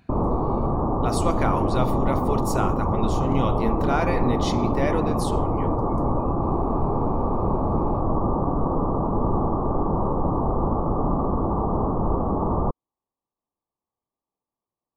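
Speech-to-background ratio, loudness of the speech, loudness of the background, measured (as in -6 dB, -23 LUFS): -4.0 dB, -28.5 LUFS, -24.5 LUFS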